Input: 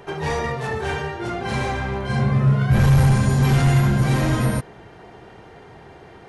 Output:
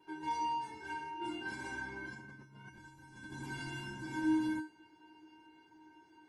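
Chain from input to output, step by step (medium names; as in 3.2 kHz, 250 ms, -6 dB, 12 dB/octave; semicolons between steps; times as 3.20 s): 1.21–3.32 s: compressor with a negative ratio -24 dBFS, ratio -1; feedback comb 310 Hz, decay 0.33 s, harmonics odd, mix 100%; trim +1 dB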